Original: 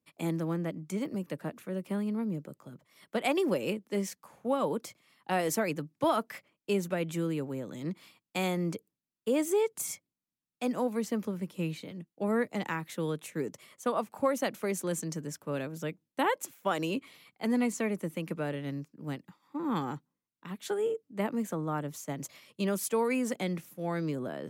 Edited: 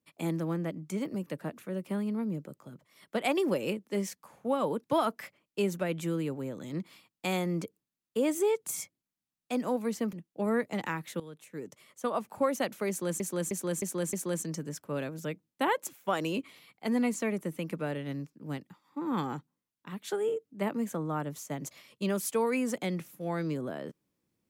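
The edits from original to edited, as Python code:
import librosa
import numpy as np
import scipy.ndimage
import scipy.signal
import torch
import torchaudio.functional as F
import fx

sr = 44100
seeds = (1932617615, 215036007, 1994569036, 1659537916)

y = fx.edit(x, sr, fx.cut(start_s=4.84, length_s=1.11),
    fx.cut(start_s=11.24, length_s=0.71),
    fx.fade_in_from(start_s=13.02, length_s=1.08, floor_db=-16.5),
    fx.repeat(start_s=14.71, length_s=0.31, count=5), tone=tone)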